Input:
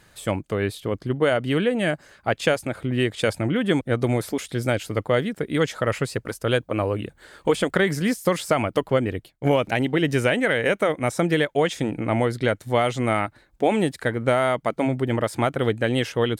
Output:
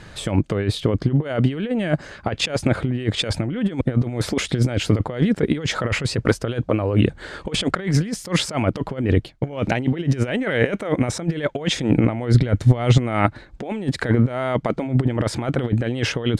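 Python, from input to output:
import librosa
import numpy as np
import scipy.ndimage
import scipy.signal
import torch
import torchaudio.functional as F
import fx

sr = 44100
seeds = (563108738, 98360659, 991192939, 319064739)

y = scipy.signal.sosfilt(scipy.signal.butter(2, 5900.0, 'lowpass', fs=sr, output='sos'), x)
y = fx.low_shelf(y, sr, hz=360.0, db=6.0)
y = fx.over_compress(y, sr, threshold_db=-24.0, ratio=-0.5)
y = fx.low_shelf(y, sr, hz=140.0, db=10.5, at=(12.34, 12.98))
y = F.gain(torch.from_numpy(y), 5.0).numpy()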